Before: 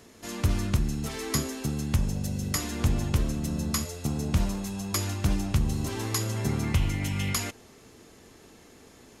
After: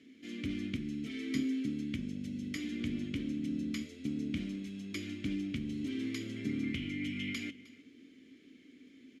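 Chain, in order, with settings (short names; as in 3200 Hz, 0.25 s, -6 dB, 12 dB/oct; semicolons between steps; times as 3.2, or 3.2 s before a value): vowel filter i; echo 0.309 s -19.5 dB; gain +5.5 dB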